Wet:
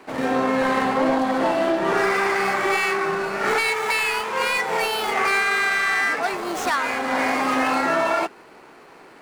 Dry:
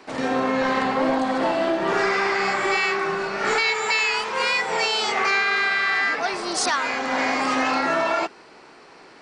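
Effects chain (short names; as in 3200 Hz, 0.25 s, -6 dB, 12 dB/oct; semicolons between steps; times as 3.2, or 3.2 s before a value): median filter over 9 samples; gain +1.5 dB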